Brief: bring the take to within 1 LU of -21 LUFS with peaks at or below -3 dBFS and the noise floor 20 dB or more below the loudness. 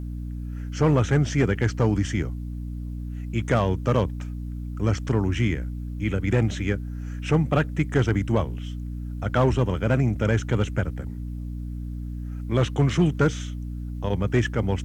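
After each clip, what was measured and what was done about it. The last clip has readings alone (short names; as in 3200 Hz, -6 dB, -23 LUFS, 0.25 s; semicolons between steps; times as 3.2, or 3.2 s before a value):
clipped 0.5%; flat tops at -12.0 dBFS; hum 60 Hz; harmonics up to 300 Hz; hum level -29 dBFS; loudness -25.5 LUFS; peak -12.0 dBFS; loudness target -21.0 LUFS
-> clip repair -12 dBFS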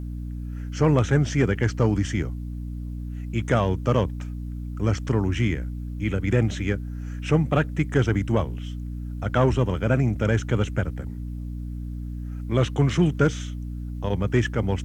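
clipped 0.0%; hum 60 Hz; harmonics up to 300 Hz; hum level -29 dBFS
-> notches 60/120/180/240/300 Hz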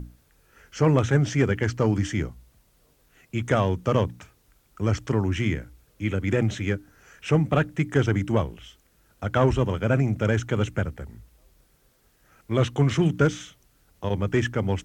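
hum none; loudness -25.0 LUFS; peak -7.5 dBFS; loudness target -21.0 LUFS
-> gain +4 dB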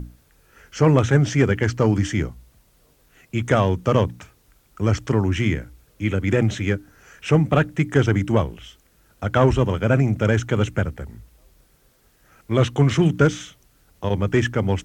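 loudness -21.0 LUFS; peak -3.5 dBFS; noise floor -59 dBFS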